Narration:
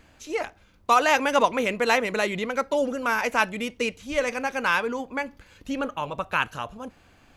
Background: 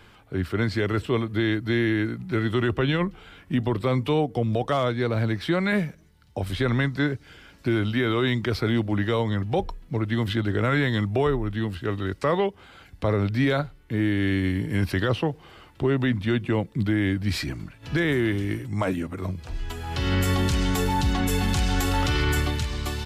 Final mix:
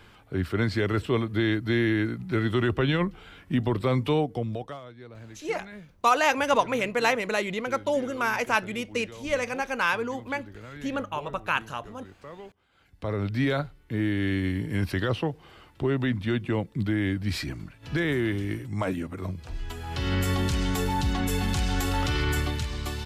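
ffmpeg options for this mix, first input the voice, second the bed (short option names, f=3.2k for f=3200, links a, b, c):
-filter_complex "[0:a]adelay=5150,volume=-2dB[a];[1:a]volume=16.5dB,afade=t=out:st=4.12:d=0.69:silence=0.105925,afade=t=in:st=12.69:d=0.69:silence=0.133352[b];[a][b]amix=inputs=2:normalize=0"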